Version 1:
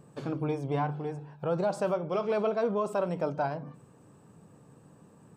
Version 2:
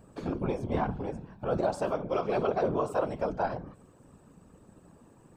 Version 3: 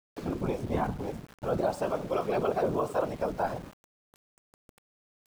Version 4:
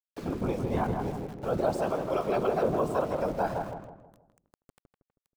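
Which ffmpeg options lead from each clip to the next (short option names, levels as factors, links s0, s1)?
-af "bandreject=f=60:t=h:w=6,bandreject=f=120:t=h:w=6,bandreject=f=180:t=h:w=6,tremolo=f=100:d=0.71,afftfilt=real='hypot(re,im)*cos(2*PI*random(0))':imag='hypot(re,im)*sin(2*PI*random(1))':win_size=512:overlap=0.75,volume=2.82"
-af "aeval=exprs='val(0)*gte(abs(val(0)),0.00596)':c=same"
-filter_complex "[0:a]asplit=2[s0][s1];[s1]adelay=160,lowpass=f=1400:p=1,volume=0.668,asplit=2[s2][s3];[s3]adelay=160,lowpass=f=1400:p=1,volume=0.42,asplit=2[s4][s5];[s5]adelay=160,lowpass=f=1400:p=1,volume=0.42,asplit=2[s6][s7];[s7]adelay=160,lowpass=f=1400:p=1,volume=0.42,asplit=2[s8][s9];[s9]adelay=160,lowpass=f=1400:p=1,volume=0.42[s10];[s0][s2][s4][s6][s8][s10]amix=inputs=6:normalize=0"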